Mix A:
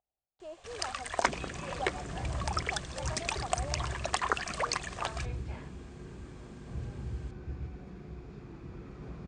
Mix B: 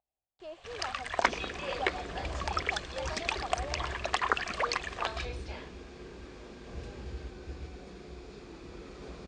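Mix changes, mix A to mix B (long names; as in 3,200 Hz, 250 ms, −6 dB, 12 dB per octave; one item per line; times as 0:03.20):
first sound: add low-pass filter 3,000 Hz 12 dB per octave
second sound: add graphic EQ with 10 bands 125 Hz −11 dB, 500 Hz +6 dB, 4,000 Hz +5 dB
master: add high-shelf EQ 2,800 Hz +11 dB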